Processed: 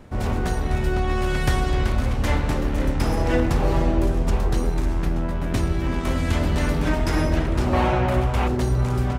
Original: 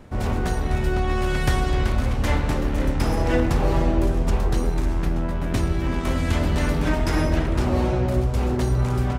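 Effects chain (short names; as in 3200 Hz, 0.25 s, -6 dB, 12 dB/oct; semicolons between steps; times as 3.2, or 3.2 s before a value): 7.73–8.48 band shelf 1500 Hz +8.5 dB 2.6 oct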